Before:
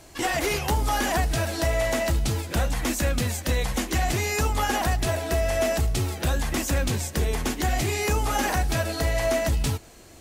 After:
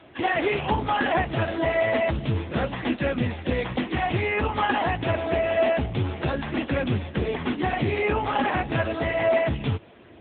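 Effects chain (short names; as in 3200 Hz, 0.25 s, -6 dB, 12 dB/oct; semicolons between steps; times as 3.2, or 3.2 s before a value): gain +4.5 dB; AMR-NB 6.7 kbps 8000 Hz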